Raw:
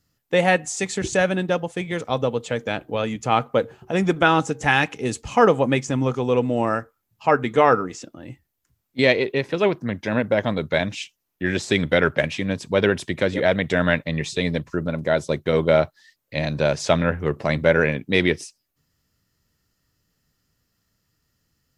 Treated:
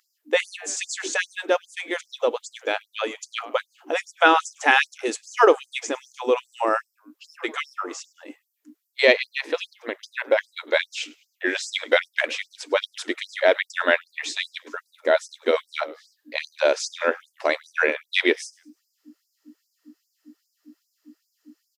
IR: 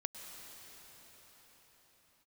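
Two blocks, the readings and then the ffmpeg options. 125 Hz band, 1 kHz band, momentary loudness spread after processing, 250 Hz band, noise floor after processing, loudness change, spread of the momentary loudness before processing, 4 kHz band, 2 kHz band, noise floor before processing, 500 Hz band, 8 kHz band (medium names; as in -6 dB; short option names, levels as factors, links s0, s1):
under -40 dB, -2.0 dB, 14 LU, -10.0 dB, -75 dBFS, -2.5 dB, 9 LU, +1.0 dB, +0.5 dB, -76 dBFS, -3.0 dB, +0.5 dB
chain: -filter_complex "[0:a]acrossover=split=9300[s0][s1];[s1]acompressor=threshold=0.00112:ratio=4:attack=1:release=60[s2];[s0][s2]amix=inputs=2:normalize=0,aeval=exprs='val(0)+0.0282*(sin(2*PI*60*n/s)+sin(2*PI*2*60*n/s)/2+sin(2*PI*3*60*n/s)/3+sin(2*PI*4*60*n/s)/4+sin(2*PI*5*60*n/s)/5)':c=same,asplit=4[s3][s4][s5][s6];[s4]adelay=104,afreqshift=-78,volume=0.0708[s7];[s5]adelay=208,afreqshift=-156,volume=0.0292[s8];[s6]adelay=312,afreqshift=-234,volume=0.0119[s9];[s3][s7][s8][s9]amix=inputs=4:normalize=0,afftfilt=real='re*gte(b*sr/1024,250*pow(4800/250,0.5+0.5*sin(2*PI*2.5*pts/sr)))':imag='im*gte(b*sr/1024,250*pow(4800/250,0.5+0.5*sin(2*PI*2.5*pts/sr)))':win_size=1024:overlap=0.75,volume=1.26"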